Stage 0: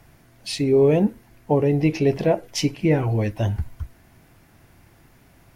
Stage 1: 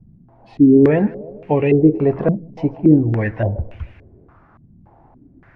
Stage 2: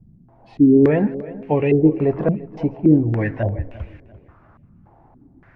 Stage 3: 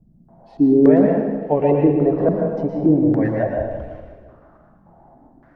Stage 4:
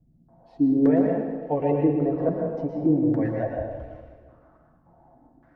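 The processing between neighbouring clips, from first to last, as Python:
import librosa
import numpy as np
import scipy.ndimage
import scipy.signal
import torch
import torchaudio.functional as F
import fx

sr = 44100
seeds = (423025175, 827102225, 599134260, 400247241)

y1 = fx.echo_feedback(x, sr, ms=155, feedback_pct=58, wet_db=-21)
y1 = fx.filter_held_lowpass(y1, sr, hz=3.5, low_hz=200.0, high_hz=2500.0)
y1 = y1 * 10.0 ** (2.0 / 20.0)
y2 = fx.echo_feedback(y1, sr, ms=345, feedback_pct=33, wet_db=-18.5)
y2 = y2 * 10.0 ** (-2.0 / 20.0)
y3 = fx.graphic_eq_15(y2, sr, hz=(100, 630, 2500), db=(-11, 7, -11))
y3 = fx.rev_plate(y3, sr, seeds[0], rt60_s=1.1, hf_ratio=0.95, predelay_ms=100, drr_db=0.0)
y3 = y3 * 10.0 ** (-2.0 / 20.0)
y4 = fx.notch_comb(y3, sr, f0_hz=200.0)
y4 = y4 * 10.0 ** (-5.5 / 20.0)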